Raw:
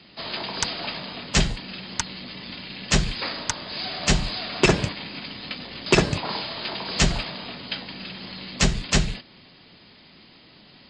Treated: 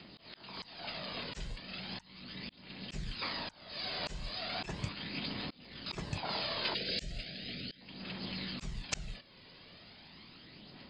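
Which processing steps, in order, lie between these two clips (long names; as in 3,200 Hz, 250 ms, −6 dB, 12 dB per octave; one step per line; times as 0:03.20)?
0:06.74–0:07.81: Butterworth band-reject 1,000 Hz, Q 0.86
phase shifter 0.37 Hz, delay 2.1 ms, feedback 38%
volume swells 608 ms
level −4.5 dB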